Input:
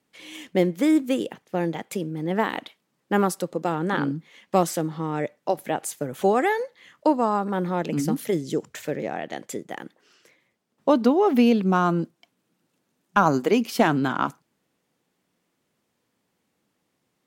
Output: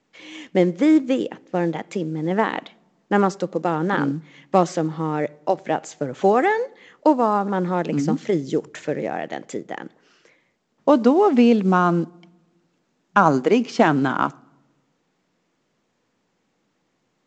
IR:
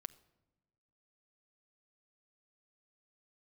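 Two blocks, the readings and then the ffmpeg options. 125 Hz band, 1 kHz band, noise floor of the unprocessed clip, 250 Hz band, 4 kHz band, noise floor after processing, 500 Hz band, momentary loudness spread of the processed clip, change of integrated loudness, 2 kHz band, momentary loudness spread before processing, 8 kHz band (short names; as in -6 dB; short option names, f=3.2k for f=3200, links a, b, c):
+3.0 dB, +3.5 dB, -75 dBFS, +3.0 dB, 0.0 dB, -70 dBFS, +3.5 dB, 14 LU, +3.5 dB, +3.0 dB, 13 LU, -4.0 dB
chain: -filter_complex "[0:a]lowshelf=f=79:g=-8,asplit=2[a][b];[1:a]atrim=start_sample=2205,lowpass=2.9k[c];[b][c]afir=irnorm=-1:irlink=0,volume=0dB[d];[a][d]amix=inputs=2:normalize=0" -ar 16000 -c:a pcm_mulaw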